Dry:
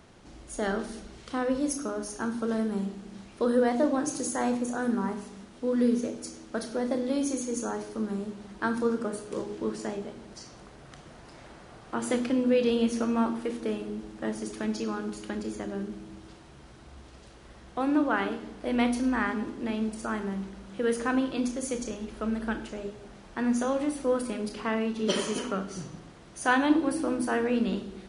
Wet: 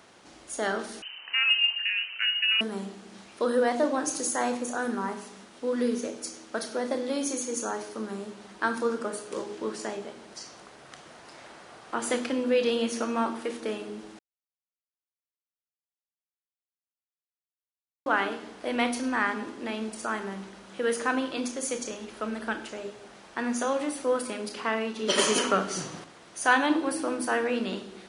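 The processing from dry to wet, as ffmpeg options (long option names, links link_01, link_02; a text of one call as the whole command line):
ffmpeg -i in.wav -filter_complex "[0:a]asettb=1/sr,asplit=3[link_01][link_02][link_03];[link_01]atrim=end=1.024[link_04];[link_02]atrim=start=1.02:end=2.61,asetpts=PTS-STARTPTS,afade=type=in:duration=0.004:curve=qsin,afade=type=out:start_time=1.586:duration=0.004:curve=qsin,lowpass=frequency=2600:width_type=q:width=0.5098,lowpass=frequency=2600:width_type=q:width=0.6013,lowpass=frequency=2600:width_type=q:width=0.9,lowpass=frequency=2600:width_type=q:width=2.563,afreqshift=-3100[link_05];[link_03]atrim=start=2.606[link_06];[link_04][link_05]acrossfade=duration=0.004:curve1=hsin:curve2=qsin[link_07];[link_07][link_06]acrossfade=duration=0.004:curve1=qsin:curve2=hsin,asplit=5[link_08][link_09][link_10][link_11][link_12];[link_08]atrim=end=14.19,asetpts=PTS-STARTPTS,afade=type=out:start_time=14.186:duration=0.004:curve=hsin[link_13];[link_09]atrim=start=14.19:end=18.06,asetpts=PTS-STARTPTS,volume=0[link_14];[link_10]atrim=start=18.06:end=25.182,asetpts=PTS-STARTPTS,afade=type=in:duration=0.004:curve=hsin[link_15];[link_11]atrim=start=25.178:end=26.042,asetpts=PTS-STARTPTS,volume=6.5dB[link_16];[link_12]atrim=start=26.038[link_17];[link_13][link_14][link_15]concat=n=3:v=0:a=1[link_18];[link_18][link_16]acrossfade=duration=0.004:curve1=hsin:curve2=hsin[link_19];[link_19][link_17]acrossfade=duration=0.004:curve1=hsin:curve2=hsin,highpass=frequency=610:poles=1,acontrast=77,volume=-2.5dB" out.wav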